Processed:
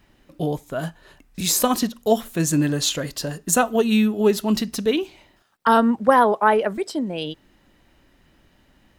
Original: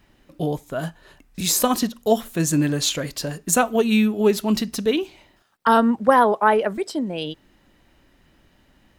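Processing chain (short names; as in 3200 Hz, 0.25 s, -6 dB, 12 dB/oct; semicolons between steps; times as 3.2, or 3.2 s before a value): 2.57–4.58 notch 2300 Hz, Q 10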